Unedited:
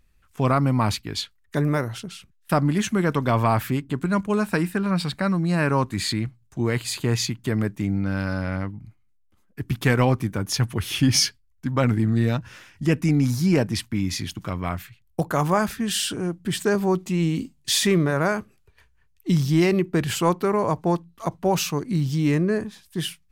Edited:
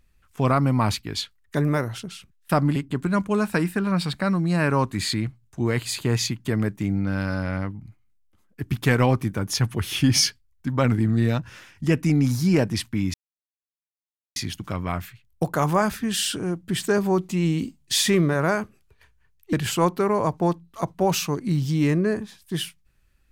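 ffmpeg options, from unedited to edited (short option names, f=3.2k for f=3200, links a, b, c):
-filter_complex "[0:a]asplit=4[a][b][c][d];[a]atrim=end=2.762[e];[b]atrim=start=3.748:end=14.13,asetpts=PTS-STARTPTS,afade=t=out:st=10.378:d=0.004:c=hsin,apad=pad_dur=1.22[f];[c]atrim=start=14.13:end=19.302,asetpts=PTS-STARTPTS,afade=t=in:d=0.004:c=hsin[g];[d]atrim=start=19.968[h];[f][g]concat=n=2:v=0:a=1[i];[e][i]acrossfade=d=0.004:c1=hsin:c2=hsin[j];[j][h]acrossfade=d=0.004:c1=hsin:c2=hsin"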